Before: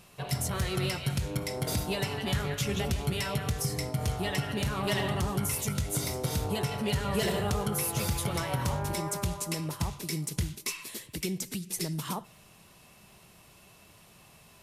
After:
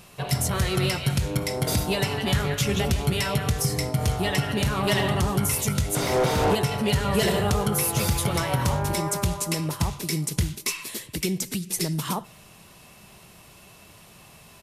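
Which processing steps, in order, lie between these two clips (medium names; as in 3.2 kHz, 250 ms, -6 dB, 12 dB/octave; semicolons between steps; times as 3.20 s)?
5.95–6.55 s: overdrive pedal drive 35 dB, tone 1.2 kHz, clips at -19 dBFS; resampled via 32 kHz; trim +6.5 dB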